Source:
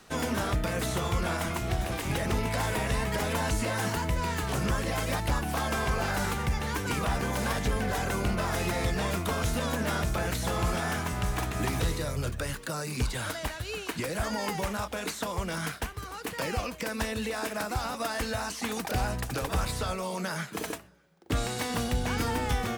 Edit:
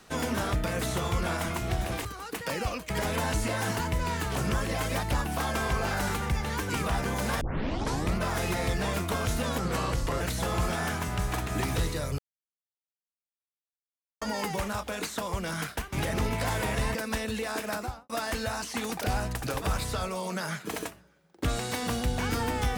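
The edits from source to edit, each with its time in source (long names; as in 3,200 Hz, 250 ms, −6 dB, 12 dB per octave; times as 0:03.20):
0:02.05–0:03.07: swap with 0:15.97–0:16.82
0:07.58: tape start 0.77 s
0:09.75–0:10.25: play speed 80%
0:12.23–0:14.26: silence
0:17.62–0:17.97: fade out and dull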